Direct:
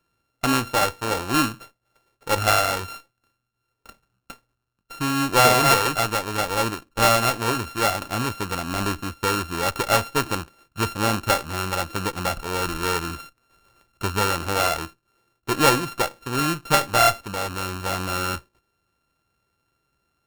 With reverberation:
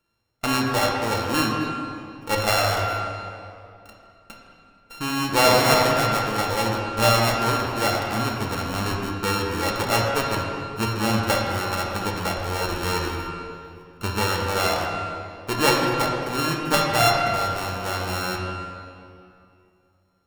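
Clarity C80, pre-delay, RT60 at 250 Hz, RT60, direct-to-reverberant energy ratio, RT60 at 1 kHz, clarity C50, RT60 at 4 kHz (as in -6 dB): 2.0 dB, 3 ms, 2.8 s, 2.6 s, -1.5 dB, 2.5 s, 1.0 dB, 1.8 s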